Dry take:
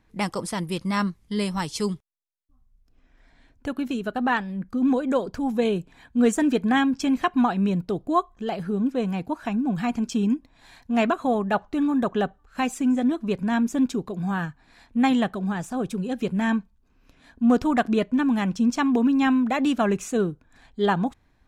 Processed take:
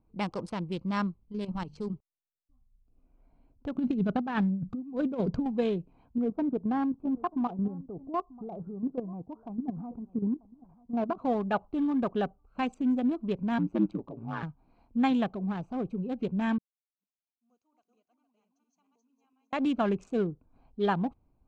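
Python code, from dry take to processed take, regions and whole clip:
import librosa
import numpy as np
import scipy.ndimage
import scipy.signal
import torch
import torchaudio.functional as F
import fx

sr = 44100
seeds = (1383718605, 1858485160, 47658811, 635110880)

y = fx.chain(x, sr, fx.low_shelf(hz=83.0, db=9.5),
    fx.hum_notches(base_hz=50, count=5),
    fx.level_steps(step_db=9), at=(1.24, 1.93))
y = fx.chain(y, sr, fx.peak_eq(hz=160.0, db=13.0, octaves=1.1),
    fx.over_compress(threshold_db=-23.0, ratio=-0.5), at=(3.75, 5.46))
y = fx.chain(y, sr, fx.lowpass(hz=1300.0, slope=24),
    fx.level_steps(step_db=11),
    fx.echo_single(ms=939, db=-21.0), at=(6.18, 11.18))
y = fx.chain(y, sr, fx.bass_treble(bass_db=-4, treble_db=-9),
    fx.comb(ms=3.5, depth=0.88),
    fx.ring_mod(carrier_hz=57.0), at=(13.58, 14.43))
y = fx.chain(y, sr, fx.reverse_delay_fb(ms=229, feedback_pct=44, wet_db=-2),
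    fx.bandpass_q(hz=6600.0, q=14.0), at=(16.58, 19.53))
y = fx.wiener(y, sr, points=25)
y = scipy.signal.sosfilt(scipy.signal.butter(2, 4700.0, 'lowpass', fs=sr, output='sos'), y)
y = fx.peak_eq(y, sr, hz=1900.0, db=-5.0, octaves=0.24)
y = y * librosa.db_to_amplitude(-5.0)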